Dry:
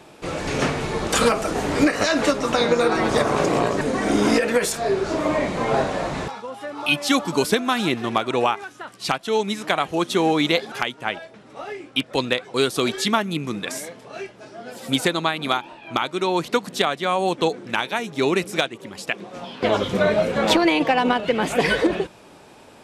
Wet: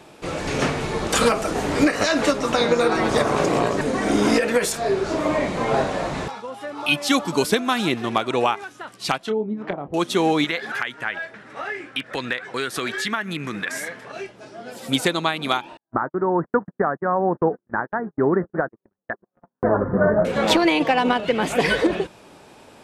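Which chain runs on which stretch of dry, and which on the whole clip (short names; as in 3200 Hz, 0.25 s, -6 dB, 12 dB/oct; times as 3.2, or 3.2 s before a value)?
9.19–9.94 treble ducked by the level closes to 450 Hz, closed at -20 dBFS + high shelf 6200 Hz -5 dB + doubler 28 ms -10 dB
10.44–14.12 bell 1700 Hz +14.5 dB 0.84 oct + compressor 2.5:1, threshold -25 dBFS
15.77–20.25 steep low-pass 1800 Hz 96 dB/oct + low shelf 230 Hz +5 dB + gate -30 dBFS, range -49 dB
whole clip: dry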